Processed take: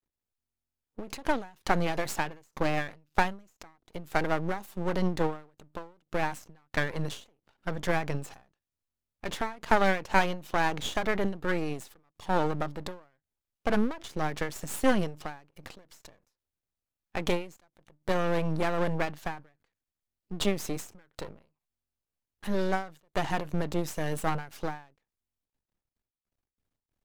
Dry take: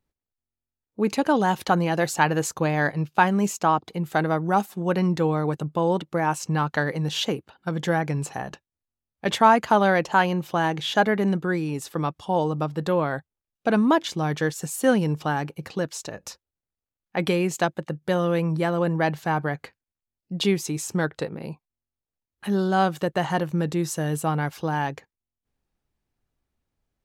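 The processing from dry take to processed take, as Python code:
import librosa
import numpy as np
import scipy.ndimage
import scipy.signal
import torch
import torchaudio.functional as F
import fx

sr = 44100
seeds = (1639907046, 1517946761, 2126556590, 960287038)

y = np.maximum(x, 0.0)
y = fx.end_taper(y, sr, db_per_s=150.0)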